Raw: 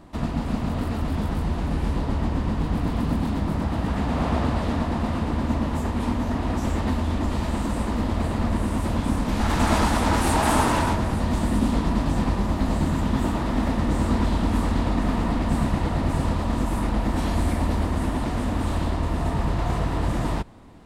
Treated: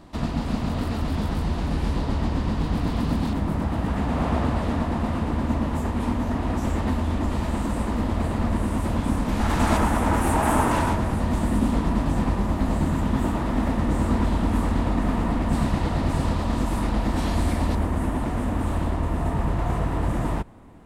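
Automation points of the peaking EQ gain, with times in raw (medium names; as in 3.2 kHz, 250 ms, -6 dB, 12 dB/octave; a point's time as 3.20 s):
peaking EQ 4.5 kHz 1.2 oct
+4 dB
from 3.33 s -3.5 dB
from 9.77 s -11.5 dB
from 10.71 s -5 dB
from 15.53 s +1.5 dB
from 17.75 s -8.5 dB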